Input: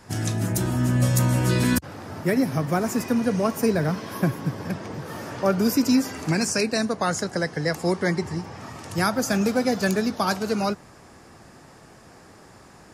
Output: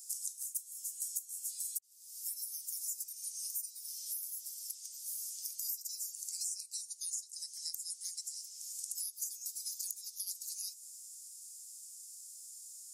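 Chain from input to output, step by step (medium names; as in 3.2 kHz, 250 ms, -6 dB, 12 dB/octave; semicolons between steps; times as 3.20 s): inverse Chebyshev high-pass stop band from 1.3 kHz, stop band 80 dB; compression 8:1, threshold -51 dBFS, peak gain reduction 25.5 dB; trim +13.5 dB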